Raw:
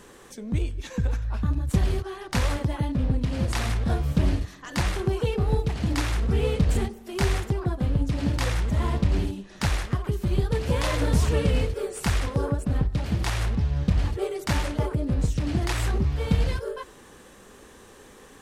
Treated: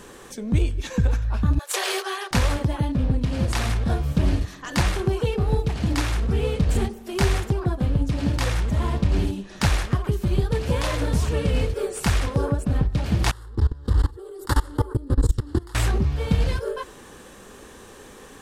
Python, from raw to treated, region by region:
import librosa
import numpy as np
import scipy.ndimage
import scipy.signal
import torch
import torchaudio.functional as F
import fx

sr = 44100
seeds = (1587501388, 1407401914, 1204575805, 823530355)

y = fx.chain(x, sr, fx.steep_highpass(hz=380.0, slope=96),
    fx.tilt_shelf(db=-7.0, hz=710.0), at=(1.59, 2.31))
y = fx.chain(y, sr, fx.peak_eq(hz=6100.0, db=-13.5, octaves=0.21),
    fx.level_steps(step_db=23),
    fx.fixed_phaser(hz=650.0, stages=6), at=(13.31, 15.75))
y = fx.notch(y, sr, hz=2000.0, q=28.0)
y = fx.rider(y, sr, range_db=10, speed_s=0.5)
y = y * librosa.db_to_amplitude(3.0)